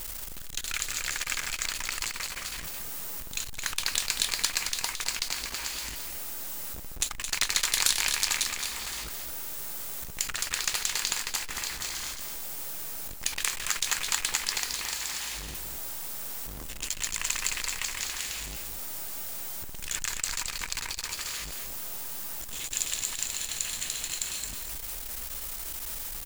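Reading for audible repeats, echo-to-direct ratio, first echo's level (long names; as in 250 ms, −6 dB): 2, −7.0 dB, −7.0 dB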